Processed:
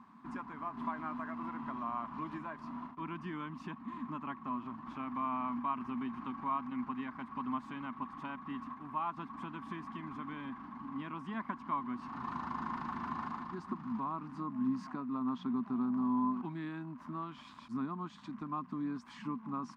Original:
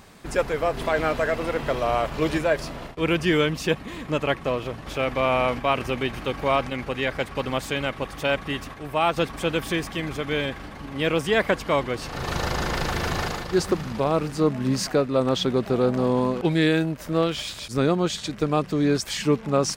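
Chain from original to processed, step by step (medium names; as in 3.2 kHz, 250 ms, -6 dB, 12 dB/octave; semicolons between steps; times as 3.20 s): compression 2:1, threshold -28 dBFS, peak gain reduction 7.5 dB; two resonant band-passes 500 Hz, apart 2.1 oct; trim +1.5 dB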